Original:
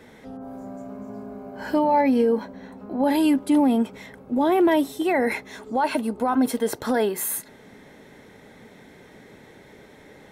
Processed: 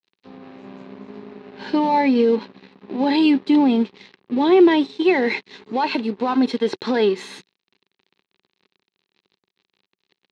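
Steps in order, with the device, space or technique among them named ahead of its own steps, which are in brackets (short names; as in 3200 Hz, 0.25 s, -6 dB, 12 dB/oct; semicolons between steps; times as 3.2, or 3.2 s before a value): low shelf 330 Hz -3.5 dB; blown loudspeaker (crossover distortion -41.5 dBFS; speaker cabinet 130–5000 Hz, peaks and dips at 190 Hz +5 dB, 380 Hz +7 dB, 640 Hz -10 dB, 1400 Hz -6 dB, 2600 Hz +4 dB, 4000 Hz +8 dB); gain +4.5 dB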